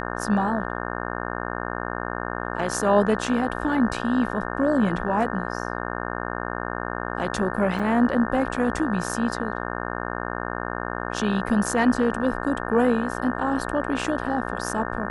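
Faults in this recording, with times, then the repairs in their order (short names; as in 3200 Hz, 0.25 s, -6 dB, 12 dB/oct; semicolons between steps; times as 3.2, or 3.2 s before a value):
buzz 60 Hz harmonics 30 -30 dBFS
7.79–7.8 gap 5.5 ms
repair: de-hum 60 Hz, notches 30; interpolate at 7.79, 5.5 ms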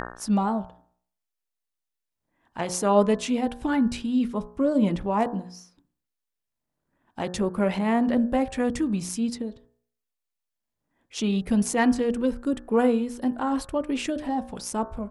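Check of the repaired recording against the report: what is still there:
none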